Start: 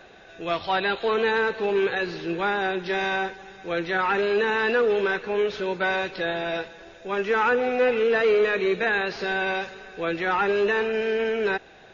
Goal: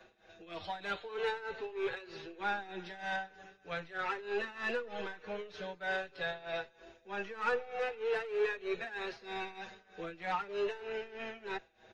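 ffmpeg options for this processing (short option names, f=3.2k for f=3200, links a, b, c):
-filter_complex "[0:a]aeval=exprs='0.251*(cos(1*acos(clip(val(0)/0.251,-1,1)))-cos(1*PI/2))+0.01*(cos(6*acos(clip(val(0)/0.251,-1,1)))-cos(6*PI/2))':c=same,tremolo=f=3.2:d=0.84,acrossover=split=190|350|2200[a][b][c][d];[b]acompressor=threshold=-50dB:ratio=6[e];[a][e][c][d]amix=inputs=4:normalize=0,asplit=2[f][g];[g]adelay=5.7,afreqshift=-0.43[h];[f][h]amix=inputs=2:normalize=1,volume=-6.5dB"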